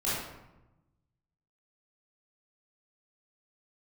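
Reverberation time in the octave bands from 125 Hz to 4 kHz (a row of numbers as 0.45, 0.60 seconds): 1.7, 1.3, 1.0, 0.95, 0.75, 0.55 seconds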